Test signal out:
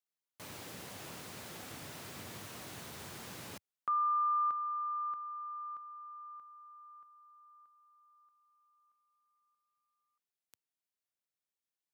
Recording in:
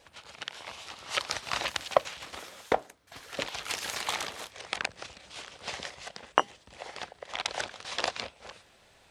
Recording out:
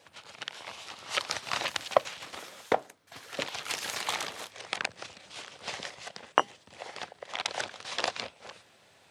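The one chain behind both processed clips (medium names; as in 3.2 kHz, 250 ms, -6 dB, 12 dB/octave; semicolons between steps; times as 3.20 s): high-pass 93 Hz 24 dB/octave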